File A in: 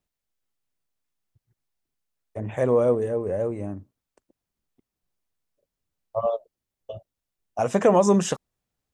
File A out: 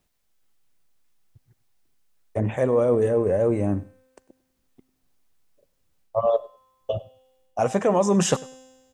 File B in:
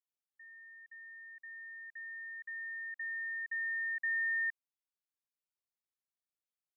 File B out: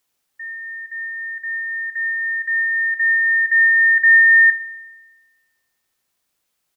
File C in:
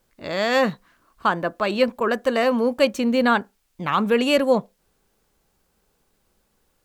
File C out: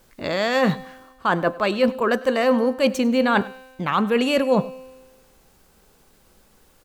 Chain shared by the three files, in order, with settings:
reverse; compression 6:1, threshold -28 dBFS; reverse; feedback comb 260 Hz, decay 1.3 s, mix 60%; feedback delay 99 ms, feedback 17%, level -21.5 dB; peak normalisation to -6 dBFS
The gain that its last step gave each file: +18.0 dB, +29.5 dB, +18.5 dB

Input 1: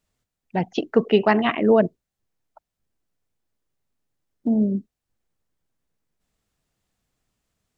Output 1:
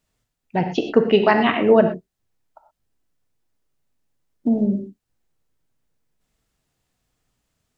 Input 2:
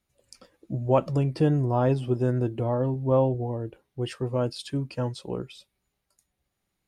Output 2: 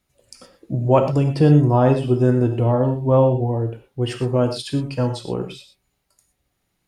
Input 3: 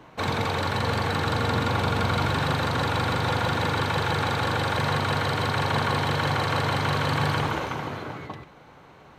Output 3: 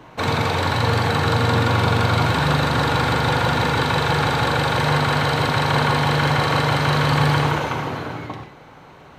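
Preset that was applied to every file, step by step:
gated-style reverb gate 140 ms flat, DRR 5.5 dB; normalise loudness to -19 LUFS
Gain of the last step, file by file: +2.0 dB, +6.5 dB, +4.5 dB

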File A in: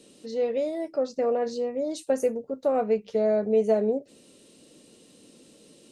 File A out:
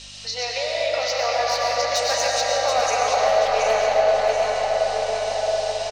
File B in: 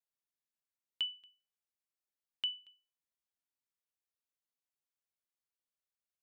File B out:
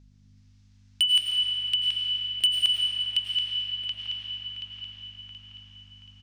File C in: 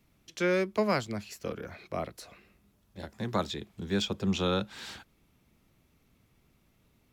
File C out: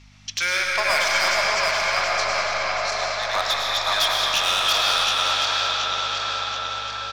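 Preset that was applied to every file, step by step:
backward echo that repeats 364 ms, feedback 64%, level -2 dB; Chebyshev band-pass 740–5800 Hz, order 3; tilt EQ +3.5 dB/octave; in parallel at +2 dB: compression 16:1, threshold -43 dBFS; on the sum: overload inside the chain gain 25 dB; hum 50 Hz, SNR 22 dB; echo from a far wall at 240 m, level -6 dB; algorithmic reverb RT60 5 s, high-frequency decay 0.6×, pre-delay 65 ms, DRR -3 dB; trim +7.5 dB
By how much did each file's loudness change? +5.5 LU, +14.0 LU, +11.5 LU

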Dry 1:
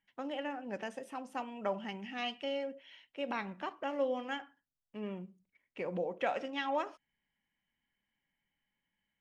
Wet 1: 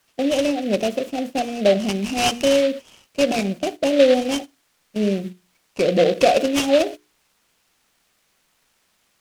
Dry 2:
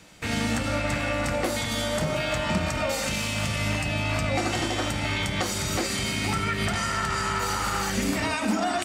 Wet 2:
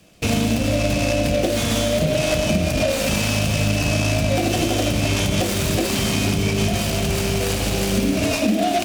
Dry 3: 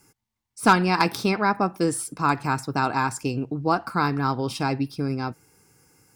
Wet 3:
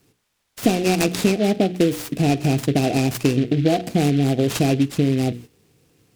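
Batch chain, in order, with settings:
Chebyshev band-stop 710–2400 Hz, order 4; hum notches 60/120/180/240/300/360/420/480 Hz; added noise blue -64 dBFS; compression 6:1, threshold -29 dBFS; gate -50 dBFS, range -11 dB; distance through air 80 m; delay time shaken by noise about 2.6 kHz, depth 0.049 ms; normalise loudness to -20 LUFS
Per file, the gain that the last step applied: +21.5 dB, +13.5 dB, +15.0 dB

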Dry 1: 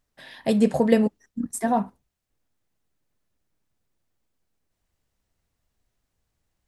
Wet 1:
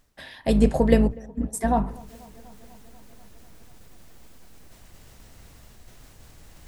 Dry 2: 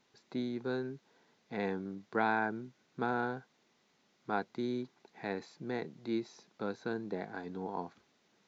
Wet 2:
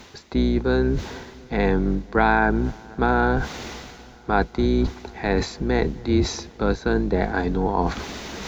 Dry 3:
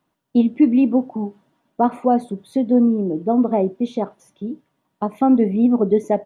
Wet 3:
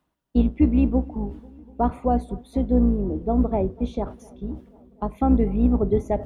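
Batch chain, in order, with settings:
octave divider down 2 oct, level -1 dB; reverse; upward compressor, threshold -25 dBFS; reverse; feedback echo behind a low-pass 245 ms, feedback 75%, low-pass 1.7 kHz, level -24 dB; normalise loudness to -23 LUFS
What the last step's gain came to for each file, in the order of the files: -0.5 dB, +12.0 dB, -5.5 dB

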